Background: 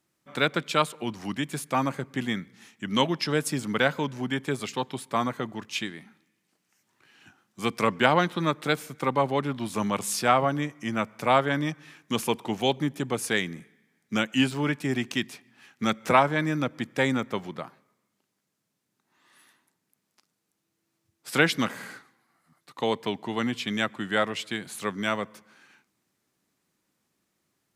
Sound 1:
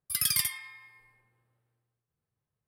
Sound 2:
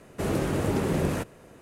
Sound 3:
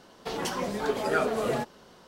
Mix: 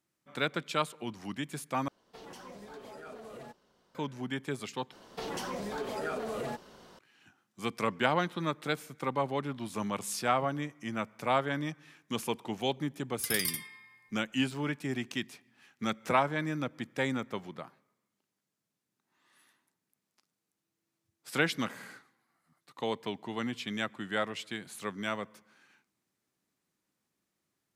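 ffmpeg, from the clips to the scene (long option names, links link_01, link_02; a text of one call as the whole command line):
ffmpeg -i bed.wav -i cue0.wav -i cue1.wav -i cue2.wav -filter_complex "[3:a]asplit=2[link_01][link_02];[0:a]volume=-7dB[link_03];[link_01]alimiter=limit=-22.5dB:level=0:latency=1:release=42[link_04];[link_02]acompressor=threshold=-39dB:ratio=2.5:attack=16:release=39:knee=1:detection=peak[link_05];[link_03]asplit=3[link_06][link_07][link_08];[link_06]atrim=end=1.884[link_09];[link_04]atrim=end=2.07,asetpts=PTS-STARTPTS,volume=-16dB[link_10];[link_07]atrim=start=3.946:end=4.924[link_11];[link_05]atrim=end=2.07,asetpts=PTS-STARTPTS,volume=-1dB[link_12];[link_08]atrim=start=6.986[link_13];[1:a]atrim=end=2.67,asetpts=PTS-STARTPTS,volume=-6dB,afade=type=in:duration=0.004:curve=hsin,afade=type=out:start_time=2.666:duration=0.004:curve=hsin,adelay=13090[link_14];[link_09][link_10]acrossfade=duration=0.004:curve1=hsin:curve2=hsin[link_15];[link_15][link_11]acrossfade=duration=0.004:curve1=hsin:curve2=hsin[link_16];[link_16][link_12]acrossfade=duration=0.004:curve1=hsin:curve2=hsin[link_17];[link_17][link_13]acrossfade=duration=0.004:curve1=hsin:curve2=hsin[link_18];[link_18][link_14]amix=inputs=2:normalize=0" out.wav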